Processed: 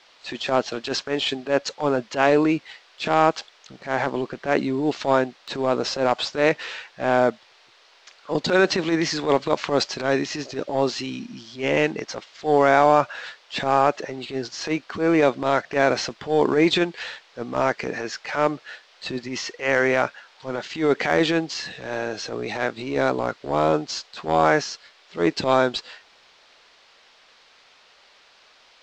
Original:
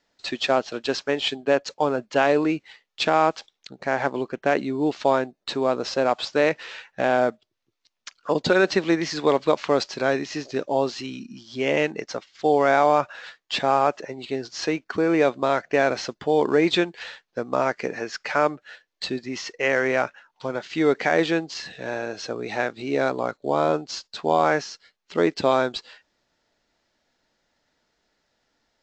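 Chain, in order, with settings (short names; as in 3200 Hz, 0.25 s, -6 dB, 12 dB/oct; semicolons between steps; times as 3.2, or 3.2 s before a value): transient shaper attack -12 dB, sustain +2 dB; band noise 420–4800 Hz -58 dBFS; gain +3 dB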